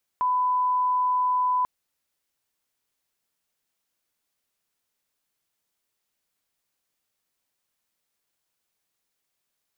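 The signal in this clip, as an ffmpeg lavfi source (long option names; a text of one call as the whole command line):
ffmpeg -f lavfi -i "sine=frequency=1000:duration=1.44:sample_rate=44100,volume=-1.94dB" out.wav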